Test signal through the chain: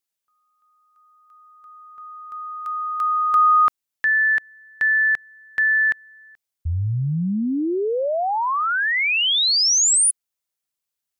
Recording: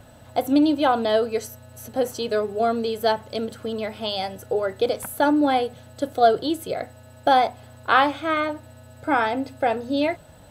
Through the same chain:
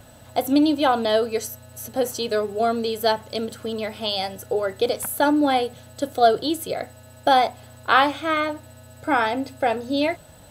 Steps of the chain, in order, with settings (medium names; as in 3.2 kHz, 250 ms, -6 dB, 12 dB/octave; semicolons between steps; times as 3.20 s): treble shelf 3.5 kHz +6.5 dB